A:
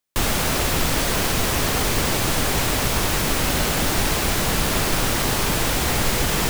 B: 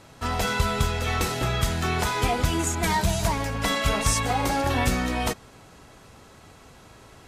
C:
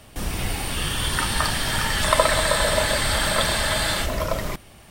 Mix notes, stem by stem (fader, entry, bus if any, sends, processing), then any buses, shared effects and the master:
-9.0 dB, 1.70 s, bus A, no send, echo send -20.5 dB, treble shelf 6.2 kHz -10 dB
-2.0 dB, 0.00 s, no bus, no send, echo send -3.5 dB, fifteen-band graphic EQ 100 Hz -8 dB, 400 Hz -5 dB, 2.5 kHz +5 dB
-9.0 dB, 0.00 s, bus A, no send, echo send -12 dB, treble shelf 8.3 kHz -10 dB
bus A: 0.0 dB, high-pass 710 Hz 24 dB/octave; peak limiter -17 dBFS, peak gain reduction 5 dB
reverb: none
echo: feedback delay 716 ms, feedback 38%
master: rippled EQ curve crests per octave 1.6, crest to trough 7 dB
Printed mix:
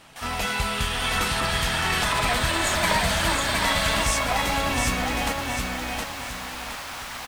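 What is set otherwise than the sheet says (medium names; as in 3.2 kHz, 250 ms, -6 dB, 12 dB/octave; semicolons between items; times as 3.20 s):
stem A: entry 1.70 s -> 1.95 s; stem C -9.0 dB -> -1.0 dB; master: missing rippled EQ curve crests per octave 1.6, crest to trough 7 dB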